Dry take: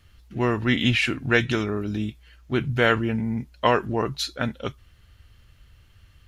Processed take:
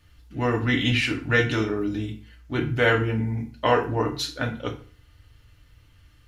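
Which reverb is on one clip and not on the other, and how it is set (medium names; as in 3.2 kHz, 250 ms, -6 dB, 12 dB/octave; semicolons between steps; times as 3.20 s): FDN reverb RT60 0.43 s, low-frequency decay 1.05×, high-frequency decay 0.8×, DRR 0.5 dB; trim -3 dB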